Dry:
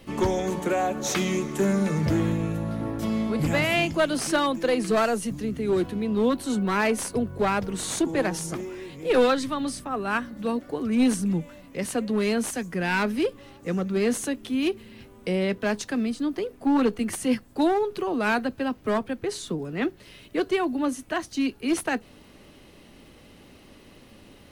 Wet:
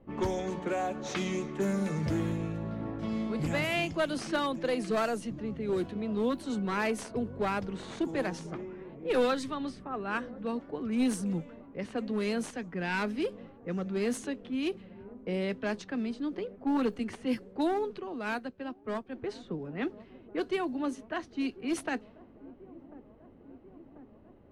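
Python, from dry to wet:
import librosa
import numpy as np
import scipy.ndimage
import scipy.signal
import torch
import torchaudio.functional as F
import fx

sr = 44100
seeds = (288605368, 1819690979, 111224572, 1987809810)

y = fx.env_lowpass(x, sr, base_hz=860.0, full_db=-19.0)
y = fx.echo_wet_lowpass(y, sr, ms=1041, feedback_pct=70, hz=700.0, wet_db=-19)
y = fx.upward_expand(y, sr, threshold_db=-39.0, expansion=1.5, at=(17.98, 19.12), fade=0.02)
y = F.gain(torch.from_numpy(y), -7.0).numpy()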